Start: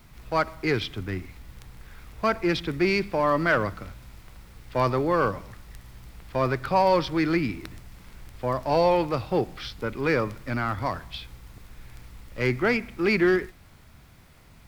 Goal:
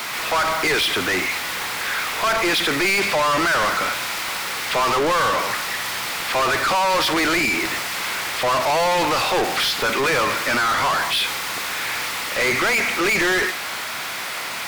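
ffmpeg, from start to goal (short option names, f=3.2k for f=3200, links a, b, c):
-filter_complex "[0:a]highpass=f=760:p=1,alimiter=limit=-20.5dB:level=0:latency=1,asplit=2[a][b];[b]highpass=f=720:p=1,volume=37dB,asoftclip=type=tanh:threshold=-17dB[c];[a][c]amix=inputs=2:normalize=0,lowpass=f=7k:p=1,volume=-6dB,volume=4dB"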